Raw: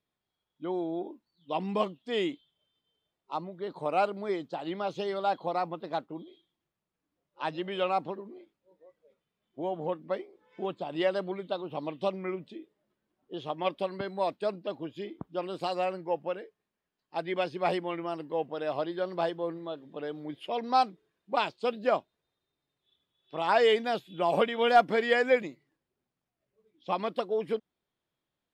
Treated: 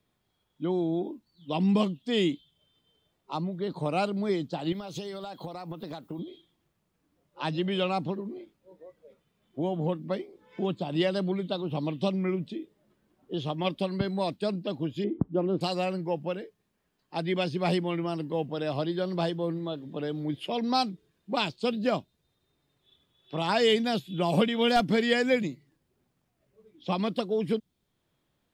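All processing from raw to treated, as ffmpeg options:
-filter_complex "[0:a]asettb=1/sr,asplit=3[a][b][c];[a]atrim=end=4.724[d];[b]atrim=start=4.72:end=6.19,asetpts=PTS-STARTPTS,afade=t=in:d=0.004:c=qsin,afade=t=out:st=1.466:d=0.004:c=qsin,aemphasis=mode=production:type=50fm,acompressor=threshold=-41dB:ratio=6:attack=3.2:release=140:knee=1:detection=peak[e];[c]atrim=start=6.186[f];[d][e]acrossfade=d=0.004:c1=hsin:c2=qsin[g];[g][f]acrossfade=d=0.004:c1=qsin:c2=hsin,asettb=1/sr,asplit=3[h][i][j];[h]atrim=end=15.044[k];[i]atrim=start=15.04:end=15.61,asetpts=PTS-STARTPTS,afade=t=in:d=0.004:c=qsin,afade=t=out:st=0.566:d=0.004:c=qsin,lowpass=1.4k,equalizer=f=350:w=0.73:g=6.5[l];[j]atrim=start=15.606[m];[k][l]acrossfade=d=0.004:c1=hsin:c2=qsin[n];[n][m]acrossfade=d=0.004:c1=qsin:c2=hsin,lowshelf=f=280:g=7,acrossover=split=250|3000[o][p][q];[p]acompressor=threshold=-58dB:ratio=1.5[r];[o][r][q]amix=inputs=3:normalize=0,volume=8.5dB"

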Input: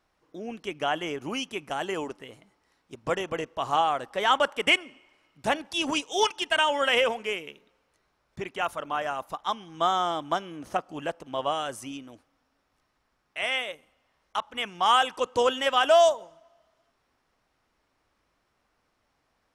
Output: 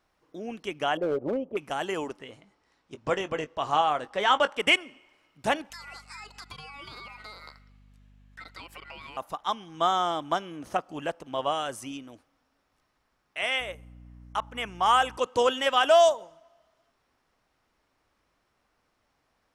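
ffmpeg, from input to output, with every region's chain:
-filter_complex "[0:a]asettb=1/sr,asplit=3[a][b][c];[a]atrim=end=0.974[d];[b]atrim=start=0.97:end=1.57,asetpts=PTS-STARTPTS,afade=t=in:d=0.004:c=qsin,afade=t=out:st=0.596:d=0.004:c=qsin,lowpass=f=550:t=q:w=6.8,asoftclip=type=hard:threshold=-22.5dB[e];[c]atrim=start=1.566[f];[d][e]acrossfade=d=0.004:c1=hsin:c2=qsin[g];[g][f]acrossfade=d=0.004:c1=qsin:c2=hsin,asettb=1/sr,asplit=3[h][i][j];[h]atrim=end=2.194[k];[i]atrim=start=2.19:end=4.59,asetpts=PTS-STARTPTS,afade=t=in:d=0.004:c=qsin,afade=t=out:st=2.396:d=0.004:c=qsin,lowpass=7.6k,asplit=2[l][m];[m]adelay=20,volume=-12.5dB[n];[l][n]amix=inputs=2:normalize=0,atrim=end_sample=105840[o];[j]atrim=start=4.586[p];[k][o]acrossfade=d=0.004:c1=hsin:c2=qsin[q];[q][p]acrossfade=d=0.004:c1=qsin:c2=hsin,asettb=1/sr,asplit=3[r][s][t];[r]atrim=end=5.704[u];[s]atrim=start=5.7:end=9.17,asetpts=PTS-STARTPTS,afade=t=in:d=0.004:c=qsin,afade=t=out:st=3.466:d=0.004:c=qsin,aeval=exprs='val(0)*sin(2*PI*1700*n/s)':c=same,acompressor=threshold=-39dB:ratio=16:attack=3.2:release=140:knee=1:detection=peak,aeval=exprs='val(0)+0.00178*(sin(2*PI*50*n/s)+sin(2*PI*2*50*n/s)/2+sin(2*PI*3*50*n/s)/3+sin(2*PI*4*50*n/s)/4+sin(2*PI*5*50*n/s)/5)':c=same[v];[t]atrim=start=9.166[w];[u][v]acrossfade=d=0.004:c1=hsin:c2=qsin[x];[x][w]acrossfade=d=0.004:c1=qsin:c2=hsin,asettb=1/sr,asplit=3[y][z][aa];[y]atrim=end=13.604[ab];[z]atrim=start=13.6:end=15.18,asetpts=PTS-STARTPTS,afade=t=in:d=0.004:c=qsin,afade=t=out:st=1.576:d=0.004:c=qsin,equalizer=f=3.8k:t=o:w=0.83:g=-6.5,aeval=exprs='val(0)+0.00447*(sin(2*PI*60*n/s)+sin(2*PI*2*60*n/s)/2+sin(2*PI*3*60*n/s)/3+sin(2*PI*4*60*n/s)/4+sin(2*PI*5*60*n/s)/5)':c=same[ac];[aa]atrim=start=15.176[ad];[ab][ac]acrossfade=d=0.004:c1=hsin:c2=qsin[ae];[ae][ad]acrossfade=d=0.004:c1=qsin:c2=hsin"

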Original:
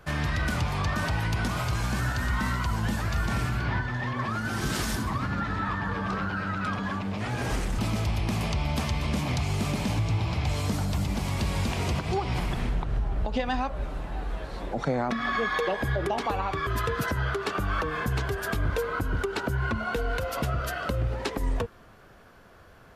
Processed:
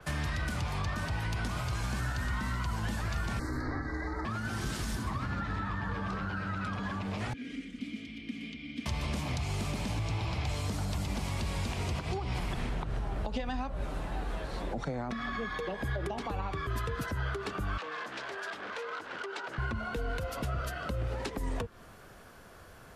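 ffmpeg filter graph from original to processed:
-filter_complex "[0:a]asettb=1/sr,asplit=3[a][b][c];[a]atrim=end=3.394[d];[b]atrim=start=3.39:end=4.25,asetpts=PTS-STARTPTS,afade=t=in:d=0.004:c=qsin,afade=t=out:st=0.856:d=0.004:c=qsin,aeval=exprs='val(0)*sin(2*PI*190*n/s)':c=same,asuperstop=centerf=2900:order=12:qfactor=1.7[e];[c]atrim=start=4.246[f];[d][e]acrossfade=d=0.004:c1=hsin:c2=qsin[g];[g][f]acrossfade=d=0.004:c1=qsin:c2=hsin,asettb=1/sr,asplit=3[h][i][j];[h]atrim=end=7.334[k];[i]atrim=start=7.33:end=8.86,asetpts=PTS-STARTPTS,afade=t=in:d=0.004:c=qsin,afade=t=out:st=1.526:d=0.004:c=qsin,asplit=3[l][m][n];[l]bandpass=f=270:t=q:w=8,volume=0dB[o];[m]bandpass=f=2.29k:t=q:w=8,volume=-6dB[p];[n]bandpass=f=3.01k:t=q:w=8,volume=-9dB[q];[o][p][q]amix=inputs=3:normalize=0,aecho=1:1:4.2:0.56,atrim=end_sample=67473[r];[j]atrim=start=8.856[s];[k][r]acrossfade=d=0.004:c1=hsin:c2=qsin[t];[t][s]acrossfade=d=0.004:c1=qsin:c2=hsin,asettb=1/sr,asplit=3[u][v][w];[u]atrim=end=17.774[x];[v]atrim=start=17.77:end=19.58,asetpts=PTS-STARTPTS,afade=t=in:d=0.004:c=qsin,afade=t=out:st=1.806:d=0.004:c=qsin,aeval=exprs='0.0531*(abs(mod(val(0)/0.0531+3,4)-2)-1)':c=same,highpass=520,lowpass=5.3k[y];[w]atrim=start=19.576[z];[x][y]acrossfade=d=0.004:c1=hsin:c2=qsin[aa];[aa][z]acrossfade=d=0.004:c1=qsin:c2=hsin,equalizer=f=9.5k:t=o:w=1.4:g=8.5,acrossover=split=85|280[ab][ac][ad];[ab]acompressor=threshold=-35dB:ratio=4[ae];[ac]acompressor=threshold=-39dB:ratio=4[af];[ad]acompressor=threshold=-37dB:ratio=4[ag];[ae][af][ag]amix=inputs=3:normalize=0,adynamicequalizer=threshold=0.00141:dfrequency=6000:dqfactor=0.7:tfrequency=6000:tqfactor=0.7:attack=5:release=100:ratio=0.375:range=4:mode=cutabove:tftype=highshelf"

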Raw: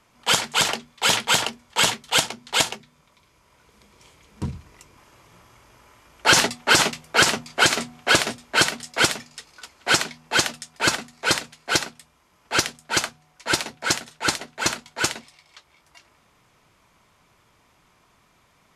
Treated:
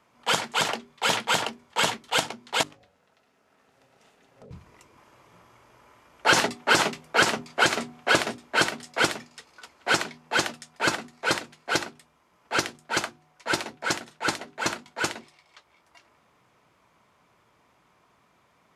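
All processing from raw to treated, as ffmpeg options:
-filter_complex "[0:a]asettb=1/sr,asplit=3[a][b][c];[a]atrim=end=2.634[d];[b]atrim=start=2.63:end=4.51,asetpts=PTS-STARTPTS,afade=t=in:d=0.004:c=qsin,afade=t=out:st=1.876:d=0.004:c=qsin,bandreject=f=50:t=h:w=6,bandreject=f=100:t=h:w=6,bandreject=f=150:t=h:w=6,bandreject=f=200:t=h:w=6,bandreject=f=250:t=h:w=6,bandreject=f=300:t=h:w=6,bandreject=f=350:t=h:w=6,bandreject=f=400:t=h:w=6,bandreject=f=450:t=h:w=6,acompressor=threshold=-42dB:ratio=6:attack=3.2:release=140:knee=1:detection=peak,aeval=exprs='val(0)*sin(2*PI*330*n/s)':c=same[e];[c]atrim=start=4.506[f];[d][e]acrossfade=d=0.004:c1=hsin:c2=qsin[g];[g][f]acrossfade=d=0.004:c1=qsin:c2=hsin,highpass=f=160:p=1,highshelf=f=2.4k:g=-9,bandreject=f=50:t=h:w=6,bandreject=f=100:t=h:w=6,bandreject=f=150:t=h:w=6,bandreject=f=200:t=h:w=6,bandreject=f=250:t=h:w=6,bandreject=f=300:t=h:w=6,bandreject=f=350:t=h:w=6,bandreject=f=400:t=h:w=6"

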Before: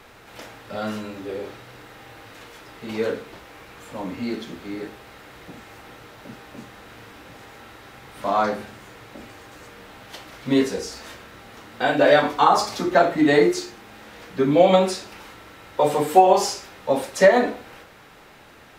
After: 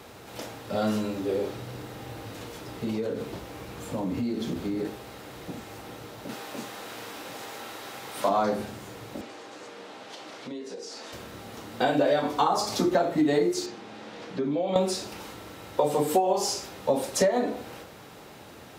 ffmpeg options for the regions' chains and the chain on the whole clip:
-filter_complex "[0:a]asettb=1/sr,asplit=3[a][b][c];[a]atrim=end=1.554[d];[b]atrim=start=1.55:end=4.85,asetpts=PTS-STARTPTS,afade=t=in:d=0.004:c=qsin,afade=t=out:st=3.296:d=0.004:c=qsin,lowshelf=f=280:g=6.5,acompressor=threshold=-29dB:ratio=10:attack=3.2:release=140:knee=1:detection=peak[e];[c]atrim=start=4.846[f];[d][e]acrossfade=d=0.004:c1=hsin:c2=qsin[g];[g][f]acrossfade=d=0.004:c1=qsin:c2=hsin,asettb=1/sr,asplit=3[h][i][j];[h]atrim=end=6.294[k];[i]atrim=start=6.29:end=8.29,asetpts=PTS-STARTPTS,afade=t=in:d=0.004:c=qsin,afade=t=out:st=1.996:d=0.004:c=qsin,highpass=f=600:p=1,acontrast=46[l];[j]atrim=start=8.286[m];[k][l]acrossfade=d=0.004:c1=hsin:c2=qsin[n];[n][m]acrossfade=d=0.004:c1=qsin:c2=hsin,asettb=1/sr,asplit=3[o][p][q];[o]atrim=end=9.214[r];[p]atrim=start=9.21:end=11.13,asetpts=PTS-STARTPTS,afade=t=in:d=0.004:c=qsin,afade=t=out:st=1.916:d=0.004:c=qsin,highpass=300,lowpass=6.4k,acompressor=threshold=-38dB:ratio=10:attack=3.2:release=140:knee=1:detection=peak[s];[q]atrim=start=11.126[t];[r][s]acrossfade=d=0.004:c1=hsin:c2=qsin[u];[u][t]acrossfade=d=0.004:c1=qsin:c2=hsin,asettb=1/sr,asplit=3[v][w][x];[v]atrim=end=13.664[y];[w]atrim=start=13.66:end=14.76,asetpts=PTS-STARTPTS,afade=t=in:d=0.004:c=qsin,afade=t=out:st=1.096:d=0.004:c=qsin,acompressor=threshold=-30dB:ratio=4:attack=3.2:release=140:knee=1:detection=peak,highpass=150,lowpass=5.2k[z];[x]atrim=start=14.756[aa];[y][z]acrossfade=d=0.004:c1=hsin:c2=qsin[ab];[ab][aa]acrossfade=d=0.004:c1=qsin:c2=hsin,highpass=70,equalizer=f=1.8k:w=0.75:g=-8,acompressor=threshold=-25dB:ratio=6,volume=4.5dB"

